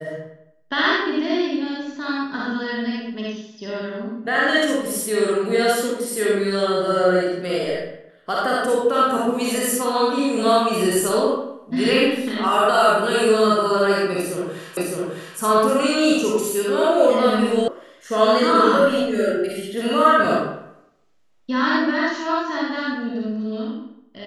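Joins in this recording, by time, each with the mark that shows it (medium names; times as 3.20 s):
14.77 s: repeat of the last 0.61 s
17.68 s: sound stops dead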